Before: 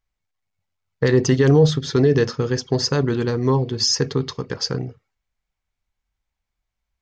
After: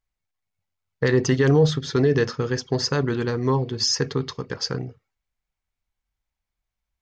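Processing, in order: dynamic EQ 1600 Hz, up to +4 dB, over -34 dBFS, Q 0.76; gain -3.5 dB

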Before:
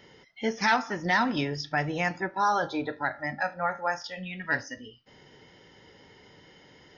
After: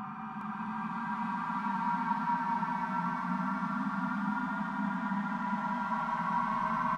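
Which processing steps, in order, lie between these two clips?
in parallel at -3.5 dB: wrapped overs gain 21.5 dB; on the sum: ring modulator 570 Hz; digital reverb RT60 0.67 s, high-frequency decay 0.65×, pre-delay 0.12 s, DRR -3.5 dB; vibrato 6 Hz 48 cents; double band-pass 450 Hz, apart 2.3 oct; Paulstretch 26×, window 0.10 s, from 2.35; on a send: echo 0.413 s -3.5 dB

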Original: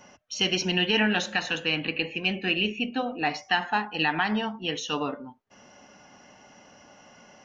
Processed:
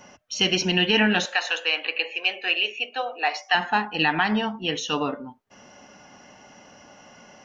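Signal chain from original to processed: 1.25–3.55 HPF 500 Hz 24 dB/oct; gain +3.5 dB

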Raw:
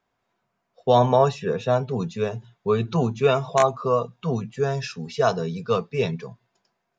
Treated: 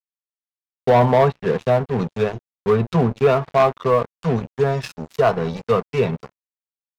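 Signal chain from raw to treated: crossover distortion -34 dBFS; treble ducked by the level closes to 2000 Hz, closed at -20 dBFS; sample leveller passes 2

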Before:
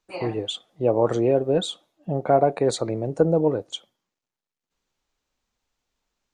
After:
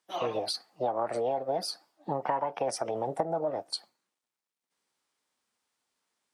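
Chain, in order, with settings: Bessel high-pass 250 Hz, order 2; compressor 8:1, threshold -26 dBFS, peak gain reduction 13 dB; formant shift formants +5 st

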